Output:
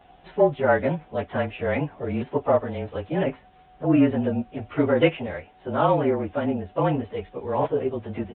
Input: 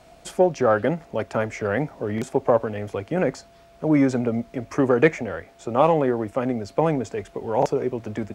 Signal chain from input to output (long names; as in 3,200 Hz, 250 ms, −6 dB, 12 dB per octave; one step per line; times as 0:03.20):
partials spread apart or drawn together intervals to 109%
downsampling to 8,000 Hz
level +1 dB